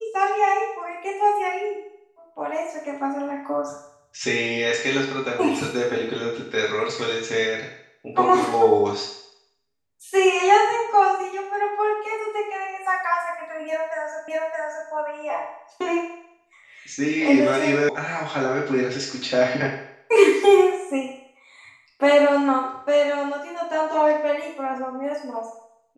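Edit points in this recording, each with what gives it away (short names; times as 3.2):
14.28 repeat of the last 0.62 s
17.89 sound cut off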